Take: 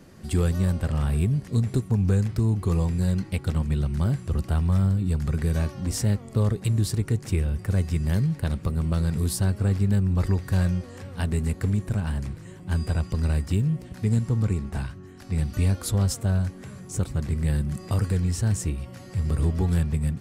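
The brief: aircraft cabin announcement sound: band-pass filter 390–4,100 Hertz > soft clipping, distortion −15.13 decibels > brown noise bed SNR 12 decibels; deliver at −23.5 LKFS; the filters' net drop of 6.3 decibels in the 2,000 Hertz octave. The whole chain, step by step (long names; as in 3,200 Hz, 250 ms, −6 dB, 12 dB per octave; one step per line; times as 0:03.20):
band-pass filter 390–4,100 Hz
parametric band 2,000 Hz −8.5 dB
soft clipping −29.5 dBFS
brown noise bed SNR 12 dB
level +17.5 dB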